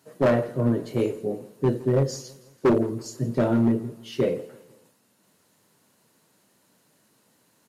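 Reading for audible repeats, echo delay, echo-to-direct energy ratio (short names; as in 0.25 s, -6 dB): 3, 0.165 s, -20.0 dB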